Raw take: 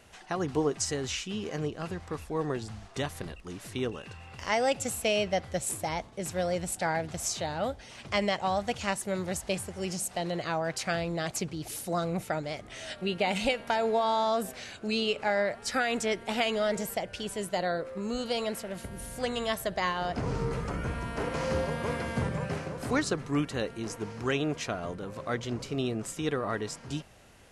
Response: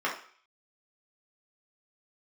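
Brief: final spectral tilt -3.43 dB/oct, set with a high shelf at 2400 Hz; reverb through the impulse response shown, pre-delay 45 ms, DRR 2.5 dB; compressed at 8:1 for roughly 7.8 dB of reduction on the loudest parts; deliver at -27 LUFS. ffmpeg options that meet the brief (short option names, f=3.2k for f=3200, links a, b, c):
-filter_complex "[0:a]highshelf=f=2.4k:g=5.5,acompressor=threshold=-30dB:ratio=8,asplit=2[a][b];[1:a]atrim=start_sample=2205,adelay=45[c];[b][c]afir=irnorm=-1:irlink=0,volume=-13dB[d];[a][d]amix=inputs=2:normalize=0,volume=6.5dB"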